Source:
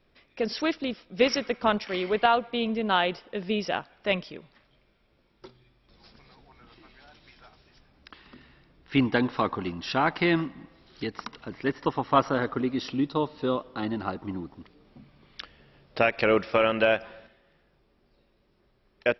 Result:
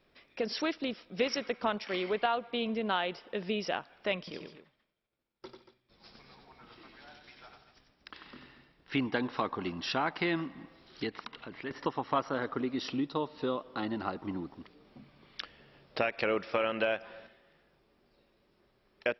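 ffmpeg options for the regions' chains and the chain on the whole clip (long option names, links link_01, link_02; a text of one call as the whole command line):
ffmpeg -i in.wav -filter_complex "[0:a]asettb=1/sr,asplit=3[link_01][link_02][link_03];[link_01]atrim=end=4.184[link_04];[link_02]atrim=start=4.18:end=8.95,asetpts=PTS-STARTPTS,afade=type=in:duration=0.004:curve=qsin,afade=type=out:start_time=4.766:duration=0.004:curve=qsin,agate=range=-33dB:threshold=-55dB:ratio=3:release=100:detection=peak,aecho=1:1:93|162|233:0.531|0.133|0.224,atrim=end_sample=210357[link_05];[link_03]atrim=start=8.946[link_06];[link_04][link_05]acrossfade=duration=0.004:curve1=hsin:curve2=qsin[link_07];[link_07][link_06]acrossfade=duration=0.004:curve1=qsin:curve2=hsin,asettb=1/sr,asplit=3[link_08][link_09][link_10];[link_08]atrim=end=11.094[link_11];[link_09]atrim=start=11.09:end=11.71,asetpts=PTS-STARTPTS,afade=type=in:duration=0.004:curve=qsin,afade=type=out:start_time=0.616:duration=0.004:curve=qsin,lowpass=frequency=3600:width=0.5412,lowpass=frequency=3600:width=1.3066,aemphasis=mode=production:type=75kf,acompressor=threshold=-42dB:ratio=2:attack=3.2:release=140:knee=1:detection=peak[link_12];[link_10]atrim=start=11.706[link_13];[link_11][link_12]acrossfade=duration=0.004:curve1=hsin:curve2=qsin[link_14];[link_14][link_13]acrossfade=duration=0.004:curve1=qsin:curve2=hsin,lowshelf=frequency=130:gain=-9,acompressor=threshold=-32dB:ratio=2" out.wav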